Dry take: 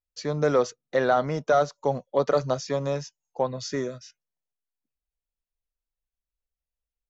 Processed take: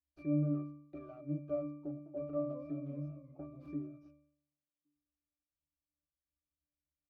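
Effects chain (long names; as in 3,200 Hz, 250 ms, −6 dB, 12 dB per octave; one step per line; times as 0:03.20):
stylus tracing distortion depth 0.21 ms
parametric band 290 Hz +12 dB 1.3 octaves
downward compressor 6 to 1, threshold −32 dBFS, peak gain reduction 19.5 dB
resonances in every octave D, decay 0.69 s
0:01.86–0:03.87: feedback echo with a swinging delay time 201 ms, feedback 62%, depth 209 cents, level −17 dB
level +11 dB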